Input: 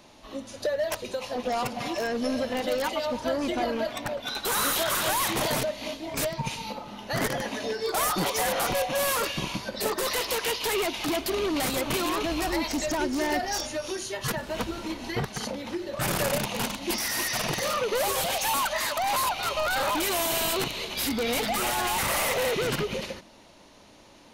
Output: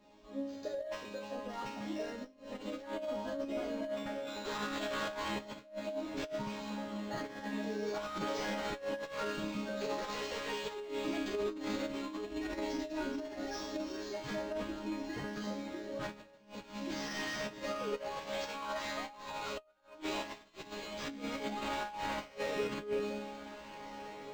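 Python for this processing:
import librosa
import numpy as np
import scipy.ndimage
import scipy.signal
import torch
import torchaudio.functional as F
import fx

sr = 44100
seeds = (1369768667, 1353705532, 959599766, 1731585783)

y = fx.low_shelf(x, sr, hz=240.0, db=11.0)
y = fx.resonator_bank(y, sr, root=56, chord='sus4', decay_s=0.74)
y = fx.echo_diffused(y, sr, ms=1692, feedback_pct=46, wet_db=-14)
y = fx.over_compress(y, sr, threshold_db=-46.0, ratio=-0.5)
y = fx.highpass(y, sr, hz=58.0, slope=6)
y = fx.peak_eq(y, sr, hz=430.0, db=5.5, octaves=0.58)
y = np.interp(np.arange(len(y)), np.arange(len(y))[::4], y[::4])
y = y * librosa.db_to_amplitude(8.0)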